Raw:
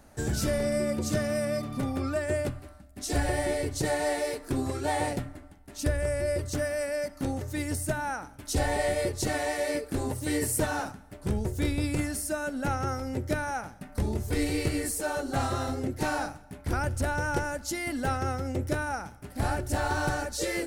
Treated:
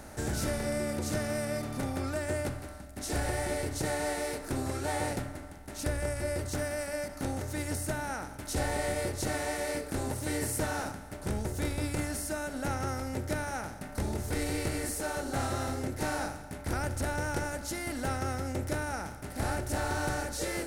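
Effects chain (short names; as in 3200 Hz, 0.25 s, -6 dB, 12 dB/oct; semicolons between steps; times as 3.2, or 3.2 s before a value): per-bin compression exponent 0.6; de-hum 143.4 Hz, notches 38; ending taper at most 130 dB/s; gain -7 dB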